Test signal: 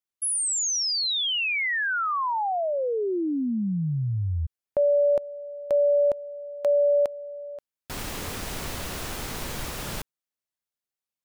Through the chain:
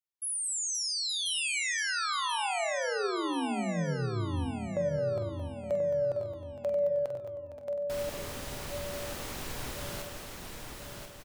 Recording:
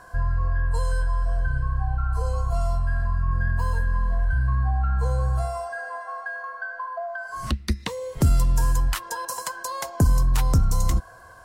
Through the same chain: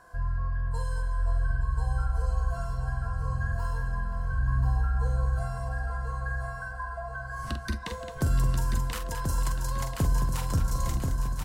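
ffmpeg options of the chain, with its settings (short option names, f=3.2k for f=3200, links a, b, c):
-filter_complex "[0:a]asplit=2[a][b];[b]aecho=0:1:1035|2070|3105|4140|5175:0.562|0.225|0.09|0.036|0.0144[c];[a][c]amix=inputs=2:normalize=0,flanger=delay=5.9:depth=1.8:regen=87:speed=0.77:shape=sinusoidal,asplit=2[d][e];[e]aecho=0:1:46|218|524|870:0.422|0.335|0.237|0.211[f];[d][f]amix=inputs=2:normalize=0,volume=-3.5dB"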